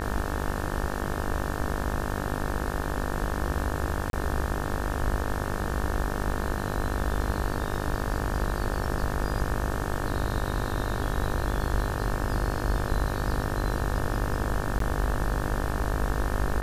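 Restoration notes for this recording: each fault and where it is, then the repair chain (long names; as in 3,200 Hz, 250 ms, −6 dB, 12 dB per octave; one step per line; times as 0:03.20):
mains buzz 50 Hz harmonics 36 −32 dBFS
0:04.10–0:04.13: drop-out 32 ms
0:14.79–0:14.80: drop-out 13 ms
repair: hum removal 50 Hz, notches 36
repair the gap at 0:04.10, 32 ms
repair the gap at 0:14.79, 13 ms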